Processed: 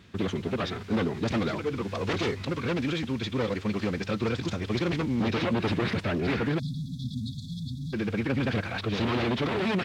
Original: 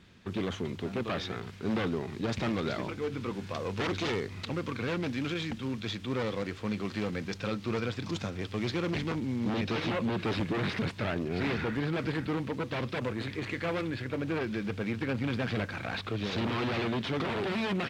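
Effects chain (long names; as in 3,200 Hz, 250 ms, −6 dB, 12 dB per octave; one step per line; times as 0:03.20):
phase-vocoder stretch with locked phases 0.55×
time-frequency box erased 0:06.59–0:07.93, 270–3,300 Hz
level +5 dB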